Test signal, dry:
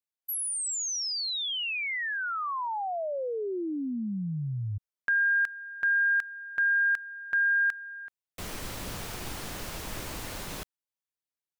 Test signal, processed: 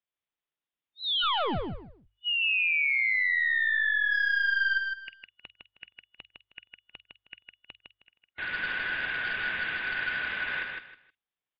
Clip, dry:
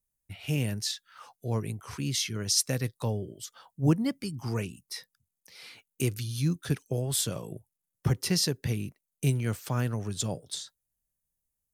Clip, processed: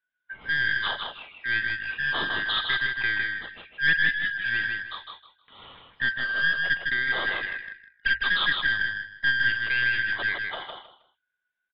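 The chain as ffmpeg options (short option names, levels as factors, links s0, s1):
-filter_complex "[0:a]afftfilt=real='real(if(lt(b,272),68*(eq(floor(b/68),0)*2+eq(floor(b/68),1)*0+eq(floor(b/68),2)*3+eq(floor(b/68),3)*1)+mod(b,68),b),0)':imag='imag(if(lt(b,272),68*(eq(floor(b/68),0)*2+eq(floor(b/68),1)*0+eq(floor(b/68),2)*3+eq(floor(b/68),3)*1)+mod(b,68),b),0)':win_size=2048:overlap=0.75,aresample=8000,aresample=44100,adynamicequalizer=threshold=0.00708:dfrequency=1300:dqfactor=1.9:tfrequency=1300:tqfactor=1.9:attack=5:release=100:ratio=0.417:range=2:mode=boostabove:tftype=bell,acrossover=split=2300[s0][s1];[s0]aeval=exprs='clip(val(0),-1,0.02)':c=same[s2];[s1]asplit=2[s3][s4];[s4]adelay=48,volume=0.376[s5];[s3][s5]amix=inputs=2:normalize=0[s6];[s2][s6]amix=inputs=2:normalize=0,highshelf=f=2900:g=3.5,acontrast=29,bandreject=f=50:t=h:w=6,bandreject=f=100:t=h:w=6,acontrast=56,asplit=2[s7][s8];[s8]aecho=0:1:157|314|471:0.631|0.151|0.0363[s9];[s7][s9]amix=inputs=2:normalize=0,volume=0.376" -ar 11025 -c:a libmp3lame -b:a 40k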